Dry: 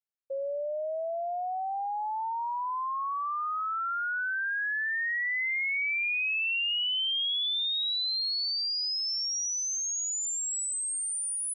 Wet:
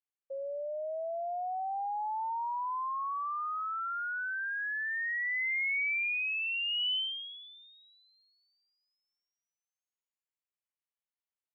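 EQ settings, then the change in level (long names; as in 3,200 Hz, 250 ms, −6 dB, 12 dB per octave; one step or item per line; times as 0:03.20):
high-pass filter 530 Hz
Chebyshev low-pass with heavy ripple 3,100 Hz, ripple 3 dB
−1.5 dB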